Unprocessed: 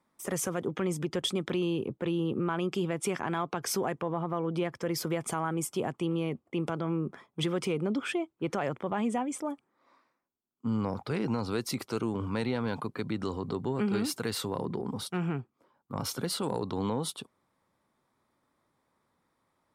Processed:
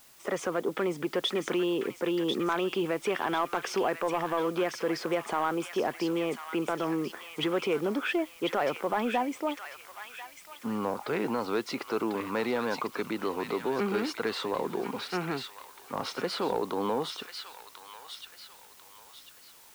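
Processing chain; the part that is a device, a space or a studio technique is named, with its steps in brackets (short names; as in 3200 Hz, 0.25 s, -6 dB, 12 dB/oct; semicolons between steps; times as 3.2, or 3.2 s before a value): tape answering machine (BPF 350–3200 Hz; soft clip -23.5 dBFS, distortion -21 dB; wow and flutter; white noise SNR 25 dB); thin delay 1.044 s, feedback 37%, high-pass 1700 Hz, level -4 dB; gain +6 dB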